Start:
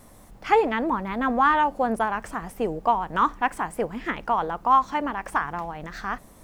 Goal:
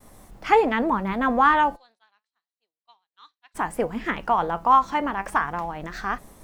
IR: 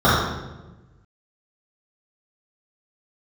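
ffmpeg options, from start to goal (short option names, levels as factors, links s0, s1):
-filter_complex "[0:a]asplit=3[s0][s1][s2];[s0]afade=t=out:st=1.75:d=0.02[s3];[s1]bandpass=f=4000:t=q:w=12:csg=0,afade=t=in:st=1.75:d=0.02,afade=t=out:st=3.54:d=0.02[s4];[s2]afade=t=in:st=3.54:d=0.02[s5];[s3][s4][s5]amix=inputs=3:normalize=0,agate=range=0.0224:threshold=0.00398:ratio=3:detection=peak,flanger=delay=2.4:depth=3.6:regen=83:speed=0.32:shape=sinusoidal,volume=2.11"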